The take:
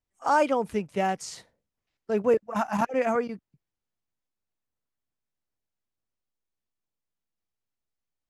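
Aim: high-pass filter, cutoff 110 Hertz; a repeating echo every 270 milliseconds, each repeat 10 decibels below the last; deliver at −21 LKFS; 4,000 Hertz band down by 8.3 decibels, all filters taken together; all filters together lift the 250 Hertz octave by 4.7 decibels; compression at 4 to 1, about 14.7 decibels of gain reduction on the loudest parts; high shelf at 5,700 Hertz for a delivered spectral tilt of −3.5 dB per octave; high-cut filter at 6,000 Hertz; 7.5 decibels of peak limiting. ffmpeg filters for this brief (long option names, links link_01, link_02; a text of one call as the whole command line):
ffmpeg -i in.wav -af "highpass=110,lowpass=6000,equalizer=frequency=250:width_type=o:gain=6,equalizer=frequency=4000:width_type=o:gain=-8,highshelf=frequency=5700:gain=-8.5,acompressor=threshold=-34dB:ratio=4,alimiter=level_in=4.5dB:limit=-24dB:level=0:latency=1,volume=-4.5dB,aecho=1:1:270|540|810|1080:0.316|0.101|0.0324|0.0104,volume=18.5dB" out.wav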